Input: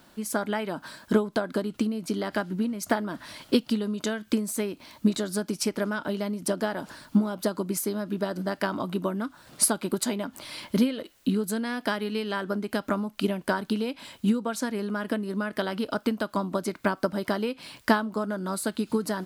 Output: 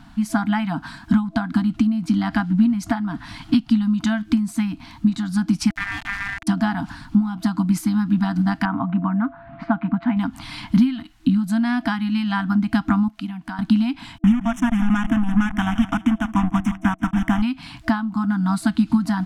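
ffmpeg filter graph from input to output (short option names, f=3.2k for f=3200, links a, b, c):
-filter_complex "[0:a]asettb=1/sr,asplit=3[a][b][c];[a]atrim=end=5.704[d];[b]atrim=start=5.7:end=6.47,asetpts=PTS-STARTPTS,afade=t=in:d=0.004:c=qsin,afade=t=out:st=0.766:d=0.004:c=qsin,bass=f=250:g=2,treble=f=4k:g=-11,acrusher=bits=3:dc=4:mix=0:aa=0.000001,aeval=exprs='val(0)*sin(2*PI*1800*n/s)':c=same[e];[c]atrim=start=6.466[f];[d][e]acrossfade=d=0.004:c1=hsin:c2=qsin[g];[g][f]acrossfade=d=0.004:c1=qsin:c2=hsin,asettb=1/sr,asplit=3[h][i][j];[h]atrim=end=8.654[k];[i]atrim=start=8.65:end=10.17,asetpts=PTS-STARTPTS,afade=t=in:d=0.004:c=qsin,afade=t=out:st=1.516:d=0.004:c=qsin,lowshelf=f=130:g=-8.5,aeval=exprs='val(0)+0.00316*sin(2*PI*680*n/s)':c=same,lowpass=f=2.2k:w=0.5412,lowpass=f=2.2k:w=1.3066[l];[j]atrim=start=10.166[m];[k][l]acrossfade=d=0.004:c1=hsin:c2=qsin[n];[n][m]acrossfade=d=0.004:c1=qsin:c2=hsin,asettb=1/sr,asplit=3[o][p][q];[o]atrim=end=13.084[r];[p]atrim=start=13.08:end=13.59,asetpts=PTS-STARTPTS,afade=t=in:d=0.004:c=qsin,afade=t=out:st=0.506:d=0.004:c=qsin,highpass=f=200:p=1,acompressor=threshold=-53dB:ratio=1.5:attack=3.2:release=140:knee=1:detection=peak[s];[q]atrim=start=13.586[t];[r][s]acrossfade=d=0.004:c1=hsin:c2=qsin[u];[u][t]acrossfade=d=0.004:c1=qsin:c2=hsin,asettb=1/sr,asplit=3[v][w][x];[v]atrim=end=14.184[y];[w]atrim=start=14.18:end=17.42,asetpts=PTS-STARTPTS,afade=t=in:d=0.004:c=qsin,afade=t=out:st=3.236:d=0.004:c=qsin,acrusher=bits=4:mix=0:aa=0.5,asuperstop=centerf=4400:order=8:qfactor=2.2,aecho=1:1:169|338|507:0.158|0.0555|0.0194,atrim=end_sample=142884[z];[x]atrim=start=17.416[aa];[y][z]acrossfade=d=0.004:c1=hsin:c2=qsin[ab];[ab][aa]acrossfade=d=0.004:c1=qsin:c2=hsin,aemphasis=mode=reproduction:type=bsi,afftfilt=real='re*(1-between(b*sr/4096,320,660))':imag='im*(1-between(b*sr/4096,320,660))':win_size=4096:overlap=0.75,alimiter=limit=-15.5dB:level=0:latency=1:release=451,volume=7.5dB"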